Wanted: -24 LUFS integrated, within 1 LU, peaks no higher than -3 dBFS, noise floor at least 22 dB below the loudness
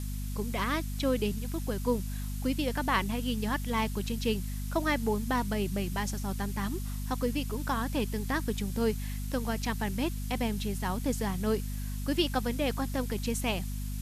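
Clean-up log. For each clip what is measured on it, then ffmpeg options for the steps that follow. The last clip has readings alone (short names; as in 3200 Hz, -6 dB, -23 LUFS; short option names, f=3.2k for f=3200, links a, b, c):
hum 50 Hz; harmonics up to 250 Hz; hum level -32 dBFS; noise floor -35 dBFS; noise floor target -54 dBFS; loudness -32.0 LUFS; peak -13.0 dBFS; loudness target -24.0 LUFS
-> -af "bandreject=f=50:t=h:w=6,bandreject=f=100:t=h:w=6,bandreject=f=150:t=h:w=6,bandreject=f=200:t=h:w=6,bandreject=f=250:t=h:w=6"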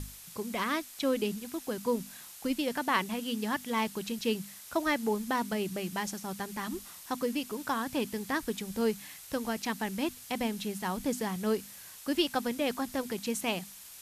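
hum none; noise floor -49 dBFS; noise floor target -55 dBFS
-> -af "afftdn=nr=6:nf=-49"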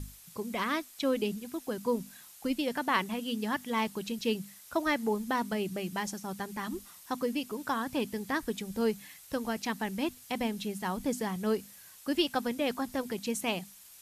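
noise floor -53 dBFS; noise floor target -56 dBFS
-> -af "afftdn=nr=6:nf=-53"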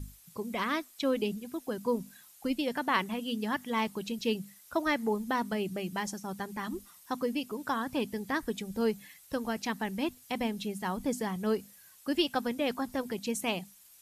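noise floor -57 dBFS; loudness -33.5 LUFS; peak -13.0 dBFS; loudness target -24.0 LUFS
-> -af "volume=9.5dB"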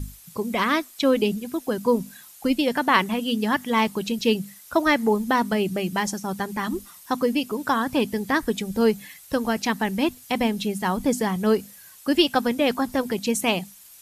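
loudness -24.0 LUFS; peak -3.5 dBFS; noise floor -48 dBFS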